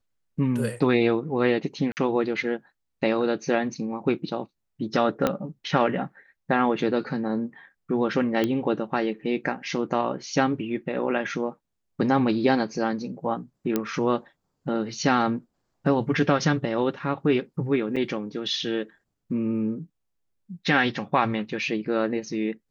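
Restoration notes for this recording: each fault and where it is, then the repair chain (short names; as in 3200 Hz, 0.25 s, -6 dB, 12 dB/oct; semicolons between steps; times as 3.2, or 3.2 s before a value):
1.92–1.97 gap 49 ms
5.27 pop -9 dBFS
8.44 pop -12 dBFS
13.76 pop -10 dBFS
17.96–17.97 gap 5.9 ms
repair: de-click; interpolate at 1.92, 49 ms; interpolate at 17.96, 5.9 ms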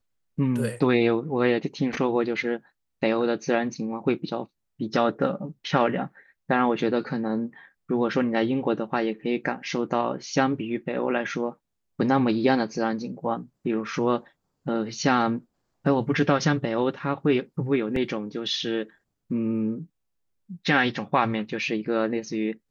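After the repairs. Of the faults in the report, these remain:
5.27 pop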